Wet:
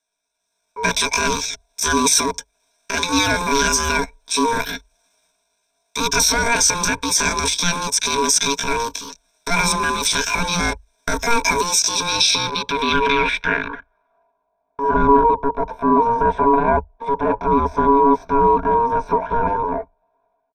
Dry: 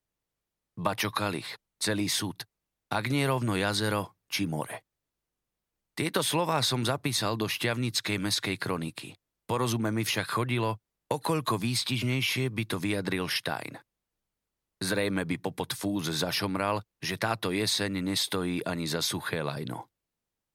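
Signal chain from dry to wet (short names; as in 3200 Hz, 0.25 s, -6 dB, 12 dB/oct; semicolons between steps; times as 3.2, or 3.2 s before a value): ring modulator 480 Hz; transient shaper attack -6 dB, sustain +6 dB; comb 6.2 ms, depth 43%; in parallel at -8.5 dB: bit-crush 5-bit; on the sum: low-pass sweep 4900 Hz -> 570 Hz, 11.97–14.52; pitch shift +6.5 st; AGC gain up to 10 dB; ripple EQ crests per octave 1.6, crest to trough 16 dB; mismatched tape noise reduction encoder only; gain -1.5 dB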